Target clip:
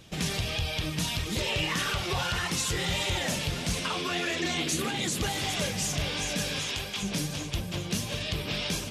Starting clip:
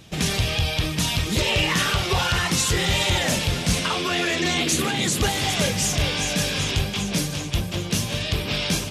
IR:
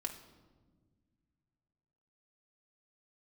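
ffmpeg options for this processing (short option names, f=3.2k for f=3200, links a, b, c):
-filter_complex "[0:a]asettb=1/sr,asplit=3[a][b][c];[a]atrim=end=6.594[d];[b]atrim=start=6.59:end=7.03,asetpts=PTS-STARTPTS,afade=t=in:d=0.004:c=qsin,afade=t=out:st=0.436:d=0.004:c=qsin,lowshelf=f=350:g=-10.5[e];[c]atrim=start=7.026[f];[d][e]acrossfade=d=0.004:c1=hsin:c2=qsin[g];[g][f]acrossfade=d=0.004:c1=qsin:c2=hsin,acompressor=threshold=-27dB:ratio=1.5,flanger=delay=1.7:depth=5.9:regen=66:speed=1.6:shape=triangular"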